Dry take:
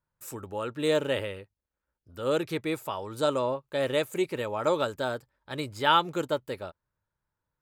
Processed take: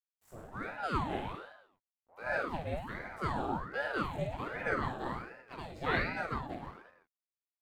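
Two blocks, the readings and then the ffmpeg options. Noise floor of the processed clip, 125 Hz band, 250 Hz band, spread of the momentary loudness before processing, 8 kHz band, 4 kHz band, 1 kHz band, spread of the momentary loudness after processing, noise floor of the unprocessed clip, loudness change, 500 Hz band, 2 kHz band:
below −85 dBFS, −2.0 dB, −7.0 dB, 14 LU, below −15 dB, −14.5 dB, −6.0 dB, 14 LU, below −85 dBFS, −7.5 dB, −11.5 dB, −1.0 dB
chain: -af "highshelf=frequency=2500:gain=-11.5,flanger=delay=16:depth=7.8:speed=1.1,aeval=exprs='sgn(val(0))*max(abs(val(0))-0.00106,0)':channel_layout=same,aecho=1:1:50|107.5|173.6|249.7|337.1:0.631|0.398|0.251|0.158|0.1,aeval=exprs='val(0)*sin(2*PI*680*n/s+680*0.7/1.3*sin(2*PI*1.3*n/s))':channel_layout=same,volume=-2.5dB"

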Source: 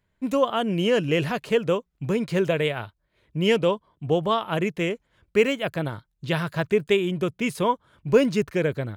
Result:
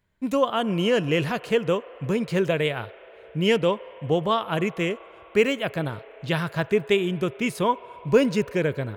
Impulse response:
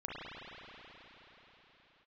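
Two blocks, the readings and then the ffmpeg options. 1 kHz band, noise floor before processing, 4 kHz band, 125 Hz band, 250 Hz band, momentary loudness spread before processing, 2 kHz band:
+0.5 dB, −74 dBFS, +0.5 dB, 0.0 dB, 0.0 dB, 8 LU, +0.5 dB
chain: -filter_complex "[0:a]asplit=2[link_01][link_02];[link_02]highpass=frequency=470:width=0.5412,highpass=frequency=470:width=1.3066[link_03];[1:a]atrim=start_sample=2205,highshelf=frequency=3100:gain=-10[link_04];[link_03][link_04]afir=irnorm=-1:irlink=0,volume=-17dB[link_05];[link_01][link_05]amix=inputs=2:normalize=0"

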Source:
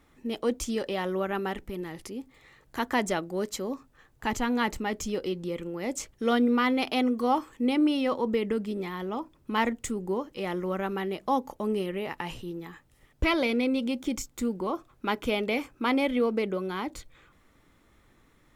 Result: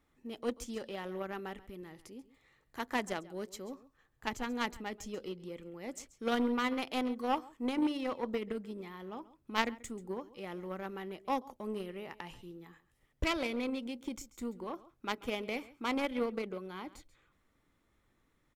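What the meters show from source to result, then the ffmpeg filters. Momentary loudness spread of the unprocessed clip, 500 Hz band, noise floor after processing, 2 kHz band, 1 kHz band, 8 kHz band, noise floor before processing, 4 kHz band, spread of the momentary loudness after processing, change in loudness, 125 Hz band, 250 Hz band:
11 LU, −9.0 dB, −74 dBFS, −7.5 dB, −7.5 dB, −10.0 dB, −63 dBFS, −7.0 dB, 14 LU, −8.5 dB, −10.0 dB, −9.5 dB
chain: -af "aecho=1:1:136:0.141,aeval=exprs='0.266*(cos(1*acos(clip(val(0)/0.266,-1,1)))-cos(1*PI/2))+0.0668*(cos(3*acos(clip(val(0)/0.266,-1,1)))-cos(3*PI/2))+0.00188*(cos(4*acos(clip(val(0)/0.266,-1,1)))-cos(4*PI/2))':channel_layout=same"

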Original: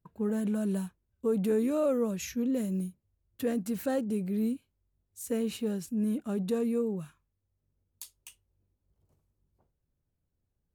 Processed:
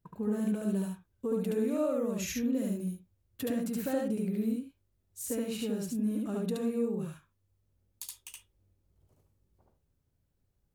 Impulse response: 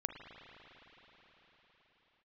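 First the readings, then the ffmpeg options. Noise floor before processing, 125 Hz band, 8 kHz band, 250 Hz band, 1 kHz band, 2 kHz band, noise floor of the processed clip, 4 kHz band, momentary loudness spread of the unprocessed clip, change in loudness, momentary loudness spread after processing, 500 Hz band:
−81 dBFS, −1.0 dB, +2.0 dB, −1.0 dB, −2.0 dB, −0.5 dB, −77 dBFS, +1.5 dB, 13 LU, −2.0 dB, 13 LU, −2.5 dB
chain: -filter_complex "[0:a]acompressor=threshold=-36dB:ratio=2.5,asplit=2[link_01][link_02];[1:a]atrim=start_sample=2205,atrim=end_sample=3528,adelay=72[link_03];[link_02][link_03]afir=irnorm=-1:irlink=0,volume=1.5dB[link_04];[link_01][link_04]amix=inputs=2:normalize=0,volume=1.5dB"

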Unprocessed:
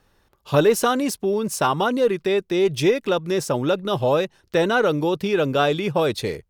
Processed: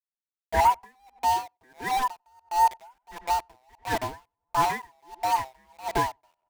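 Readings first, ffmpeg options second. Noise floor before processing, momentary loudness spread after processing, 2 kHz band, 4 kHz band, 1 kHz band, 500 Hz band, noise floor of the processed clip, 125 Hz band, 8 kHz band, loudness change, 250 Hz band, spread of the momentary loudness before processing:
−64 dBFS, 15 LU, −8.0 dB, −10.0 dB, +2.0 dB, −17.0 dB, below −85 dBFS, −14.5 dB, −7.5 dB, −6.0 dB, −19.5 dB, 4 LU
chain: -filter_complex "[0:a]afftfilt=real='real(if(lt(b,1008),b+24*(1-2*mod(floor(b/24),2)),b),0)':imag='imag(if(lt(b,1008),b+24*(1-2*mod(floor(b/24),2)),b),0)':win_size=2048:overlap=0.75,afwtdn=0.0447,bass=frequency=250:gain=-9,treble=frequency=4000:gain=-12,acontrast=54,aeval=exprs='val(0)*gte(abs(val(0)),0.106)':channel_layout=same,asplit=2[link_01][link_02];[link_02]adelay=94,lowpass=frequency=1300:poles=1,volume=-19dB,asplit=2[link_03][link_04];[link_04]adelay=94,lowpass=frequency=1300:poles=1,volume=0.39,asplit=2[link_05][link_06];[link_06]adelay=94,lowpass=frequency=1300:poles=1,volume=0.39[link_07];[link_01][link_03][link_05][link_07]amix=inputs=4:normalize=0,aeval=exprs='val(0)*pow(10,-39*(0.5-0.5*cos(2*PI*1.5*n/s))/20)':channel_layout=same,volume=-6dB"

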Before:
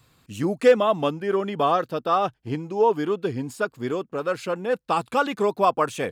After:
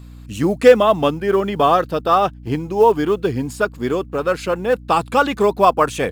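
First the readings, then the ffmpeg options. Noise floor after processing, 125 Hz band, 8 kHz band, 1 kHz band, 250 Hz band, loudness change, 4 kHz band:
−38 dBFS, +7.0 dB, +7.0 dB, +6.5 dB, +6.5 dB, +6.5 dB, +6.5 dB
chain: -af "acrusher=bits=9:mode=log:mix=0:aa=0.000001,aeval=exprs='val(0)+0.00708*(sin(2*PI*60*n/s)+sin(2*PI*2*60*n/s)/2+sin(2*PI*3*60*n/s)/3+sin(2*PI*4*60*n/s)/4+sin(2*PI*5*60*n/s)/5)':channel_layout=same,volume=6.5dB"

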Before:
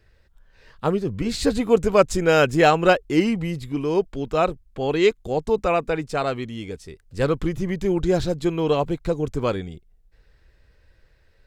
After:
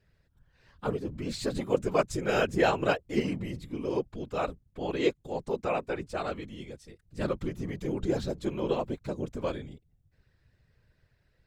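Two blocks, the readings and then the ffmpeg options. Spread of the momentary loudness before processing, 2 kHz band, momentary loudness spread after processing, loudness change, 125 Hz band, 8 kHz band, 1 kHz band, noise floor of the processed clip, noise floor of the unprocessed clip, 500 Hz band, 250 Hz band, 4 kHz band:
10 LU, −9.5 dB, 11 LU, −9.5 dB, −9.5 dB, −9.5 dB, −10.0 dB, −70 dBFS, −59 dBFS, −9.5 dB, −9.5 dB, −9.0 dB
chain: -af "afftfilt=real='hypot(re,im)*cos(2*PI*random(0))':imag='hypot(re,im)*sin(2*PI*random(1))':win_size=512:overlap=0.75,volume=-3.5dB"

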